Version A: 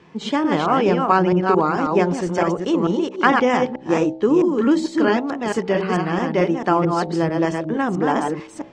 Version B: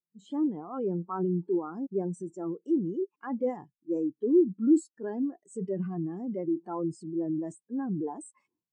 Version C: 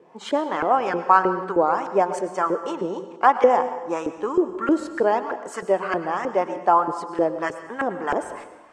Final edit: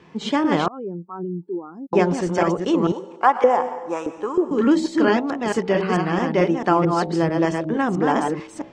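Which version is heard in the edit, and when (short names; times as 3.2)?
A
0.68–1.93 from B
2.92–4.51 from C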